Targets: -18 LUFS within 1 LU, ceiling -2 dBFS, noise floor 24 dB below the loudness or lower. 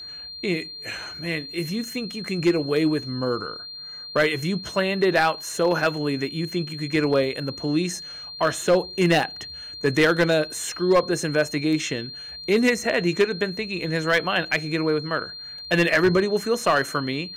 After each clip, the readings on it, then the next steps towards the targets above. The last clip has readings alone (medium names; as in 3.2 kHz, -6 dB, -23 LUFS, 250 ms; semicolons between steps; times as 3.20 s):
clipped samples 0.6%; clipping level -12.0 dBFS; steady tone 4.2 kHz; tone level -35 dBFS; loudness -23.5 LUFS; peak level -12.0 dBFS; loudness target -18.0 LUFS
-> clip repair -12 dBFS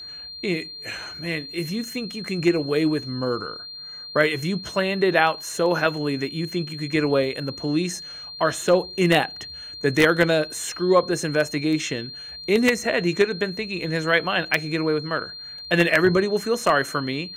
clipped samples 0.0%; steady tone 4.2 kHz; tone level -35 dBFS
-> band-stop 4.2 kHz, Q 30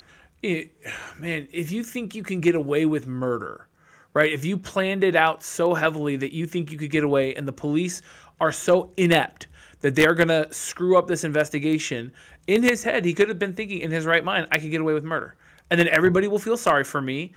steady tone not found; loudness -23.0 LUFS; peak level -3.0 dBFS; loudness target -18.0 LUFS
-> trim +5 dB; peak limiter -2 dBFS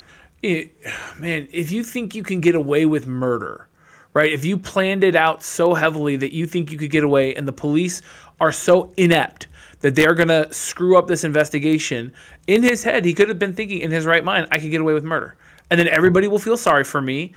loudness -18.5 LUFS; peak level -2.0 dBFS; noise floor -52 dBFS